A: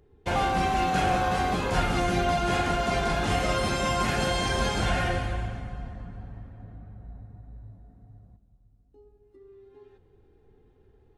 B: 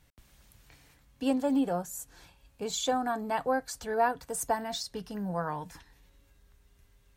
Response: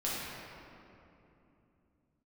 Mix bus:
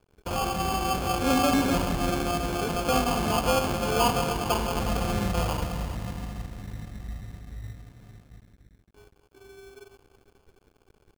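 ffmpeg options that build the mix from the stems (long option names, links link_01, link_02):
-filter_complex "[0:a]alimiter=limit=-23dB:level=0:latency=1:release=423,volume=2dB,asplit=2[link_01][link_02];[link_02]volume=-9dB[link_03];[1:a]volume=0dB,asplit=2[link_04][link_05];[link_05]volume=-8dB[link_06];[2:a]atrim=start_sample=2205[link_07];[link_03][link_06]amix=inputs=2:normalize=0[link_08];[link_08][link_07]afir=irnorm=-1:irlink=0[link_09];[link_01][link_04][link_09]amix=inputs=3:normalize=0,lowpass=1300,acrusher=samples=23:mix=1:aa=0.000001,aeval=exprs='sgn(val(0))*max(abs(val(0))-0.00251,0)':channel_layout=same"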